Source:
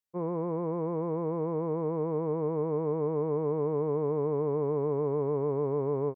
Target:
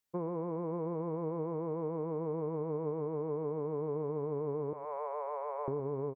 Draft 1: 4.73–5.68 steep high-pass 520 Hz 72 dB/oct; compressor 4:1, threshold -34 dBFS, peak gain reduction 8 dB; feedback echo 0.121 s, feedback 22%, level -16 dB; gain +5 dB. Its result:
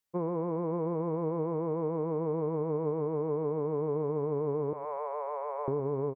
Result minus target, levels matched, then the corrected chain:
compressor: peak gain reduction -4.5 dB
4.73–5.68 steep high-pass 520 Hz 72 dB/oct; compressor 4:1, threshold -40 dBFS, peak gain reduction 12.5 dB; feedback echo 0.121 s, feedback 22%, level -16 dB; gain +5 dB

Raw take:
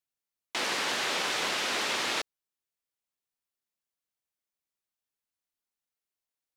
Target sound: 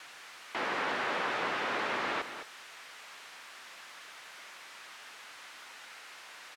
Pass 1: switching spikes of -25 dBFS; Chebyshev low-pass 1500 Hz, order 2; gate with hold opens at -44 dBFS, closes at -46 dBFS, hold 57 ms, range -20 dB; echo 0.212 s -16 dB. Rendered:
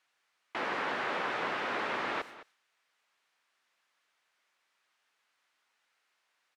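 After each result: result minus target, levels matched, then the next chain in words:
switching spikes: distortion -7 dB; echo-to-direct -6 dB
switching spikes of -17.5 dBFS; Chebyshev low-pass 1500 Hz, order 2; gate with hold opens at -44 dBFS, closes at -46 dBFS, hold 57 ms, range -20 dB; echo 0.212 s -16 dB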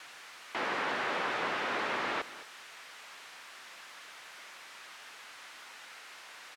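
echo-to-direct -6 dB
switching spikes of -17.5 dBFS; Chebyshev low-pass 1500 Hz, order 2; gate with hold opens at -44 dBFS, closes at -46 dBFS, hold 57 ms, range -20 dB; echo 0.212 s -10 dB

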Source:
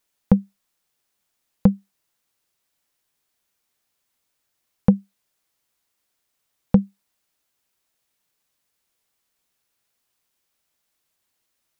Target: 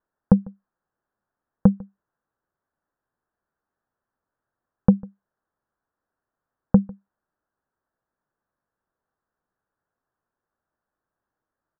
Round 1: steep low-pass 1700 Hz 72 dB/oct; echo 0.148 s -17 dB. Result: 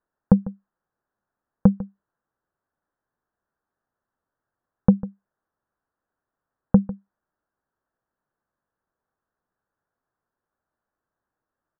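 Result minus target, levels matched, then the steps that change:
echo-to-direct +7 dB
change: echo 0.148 s -24 dB

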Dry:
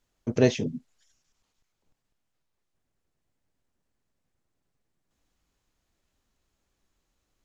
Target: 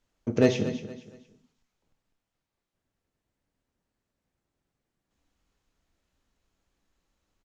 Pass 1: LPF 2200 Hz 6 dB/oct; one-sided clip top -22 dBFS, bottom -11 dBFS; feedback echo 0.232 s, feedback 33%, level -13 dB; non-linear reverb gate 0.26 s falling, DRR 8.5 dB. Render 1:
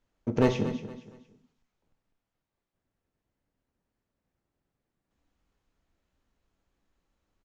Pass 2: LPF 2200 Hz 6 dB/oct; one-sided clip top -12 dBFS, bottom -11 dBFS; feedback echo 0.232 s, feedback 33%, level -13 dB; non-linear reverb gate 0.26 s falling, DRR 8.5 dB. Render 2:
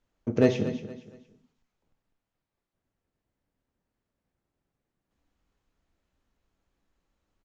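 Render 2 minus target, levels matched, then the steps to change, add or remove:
8000 Hz band -6.0 dB
change: LPF 5700 Hz 6 dB/oct

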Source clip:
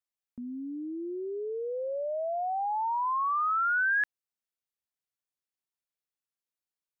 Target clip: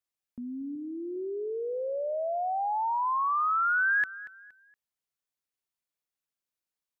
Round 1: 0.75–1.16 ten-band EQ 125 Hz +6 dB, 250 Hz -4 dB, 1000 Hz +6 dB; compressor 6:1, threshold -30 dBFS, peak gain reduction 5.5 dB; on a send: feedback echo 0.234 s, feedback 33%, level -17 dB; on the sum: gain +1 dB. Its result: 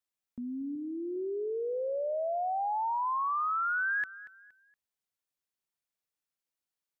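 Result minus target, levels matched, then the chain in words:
compressor: peak gain reduction +5.5 dB
0.75–1.16 ten-band EQ 125 Hz +6 dB, 250 Hz -4 dB, 1000 Hz +6 dB; on a send: feedback echo 0.234 s, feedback 33%, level -17 dB; on the sum: gain +1 dB

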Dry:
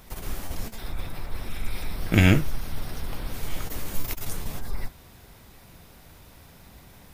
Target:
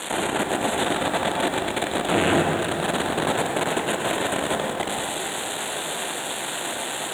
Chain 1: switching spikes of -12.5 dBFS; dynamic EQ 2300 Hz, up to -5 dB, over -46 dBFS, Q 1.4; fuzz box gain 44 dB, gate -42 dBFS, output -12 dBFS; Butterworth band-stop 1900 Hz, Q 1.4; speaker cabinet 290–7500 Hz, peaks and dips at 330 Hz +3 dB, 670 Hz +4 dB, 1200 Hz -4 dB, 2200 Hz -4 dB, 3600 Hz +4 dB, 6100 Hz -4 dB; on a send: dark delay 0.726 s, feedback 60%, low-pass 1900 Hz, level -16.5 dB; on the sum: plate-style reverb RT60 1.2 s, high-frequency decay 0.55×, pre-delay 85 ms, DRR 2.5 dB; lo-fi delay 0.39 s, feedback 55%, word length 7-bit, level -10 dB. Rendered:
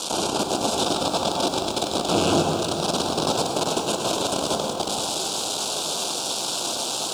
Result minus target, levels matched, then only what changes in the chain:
2000 Hz band -10.5 dB
change: Butterworth band-stop 5200 Hz, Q 1.4

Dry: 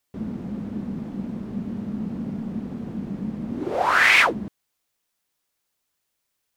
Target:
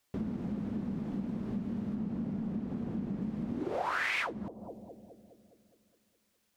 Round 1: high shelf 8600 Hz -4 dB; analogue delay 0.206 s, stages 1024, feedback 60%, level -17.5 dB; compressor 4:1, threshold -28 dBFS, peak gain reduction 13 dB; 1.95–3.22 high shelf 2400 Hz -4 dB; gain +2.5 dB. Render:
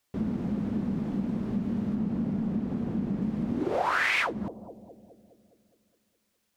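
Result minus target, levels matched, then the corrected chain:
compressor: peak gain reduction -6.5 dB
high shelf 8600 Hz -4 dB; analogue delay 0.206 s, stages 1024, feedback 60%, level -17.5 dB; compressor 4:1, threshold -36.5 dBFS, peak gain reduction 19.5 dB; 1.95–3.22 high shelf 2400 Hz -4 dB; gain +2.5 dB

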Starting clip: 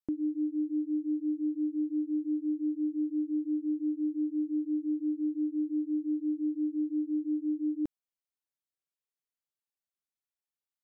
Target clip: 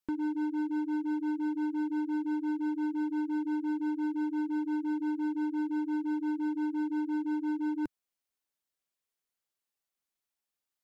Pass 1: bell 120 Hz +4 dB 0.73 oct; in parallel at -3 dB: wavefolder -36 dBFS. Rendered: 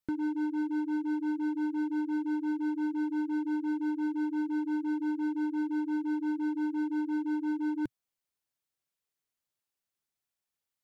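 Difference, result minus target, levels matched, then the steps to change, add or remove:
125 Hz band +5.5 dB
change: bell 120 Hz -6.5 dB 0.73 oct

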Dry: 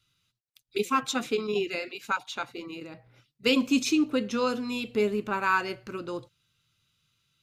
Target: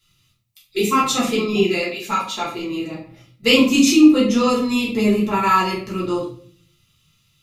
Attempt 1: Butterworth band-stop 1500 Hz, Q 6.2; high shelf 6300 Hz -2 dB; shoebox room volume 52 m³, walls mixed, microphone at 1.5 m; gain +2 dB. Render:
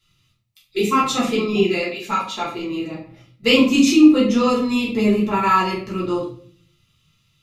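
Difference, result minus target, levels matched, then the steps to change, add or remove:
8000 Hz band -4.0 dB
change: high shelf 6300 Hz +6.5 dB

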